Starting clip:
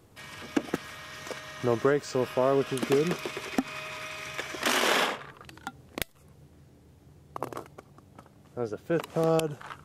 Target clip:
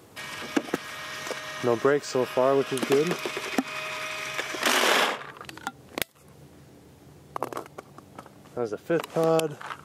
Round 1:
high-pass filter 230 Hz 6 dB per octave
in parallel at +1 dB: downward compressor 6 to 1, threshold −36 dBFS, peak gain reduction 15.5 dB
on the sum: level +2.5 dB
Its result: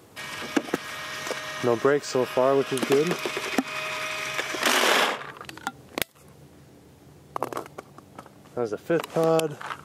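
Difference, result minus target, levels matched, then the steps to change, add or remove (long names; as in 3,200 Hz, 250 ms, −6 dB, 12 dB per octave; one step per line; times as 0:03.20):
downward compressor: peak gain reduction −7 dB
change: downward compressor 6 to 1, threshold −44.5 dBFS, peak gain reduction 22.5 dB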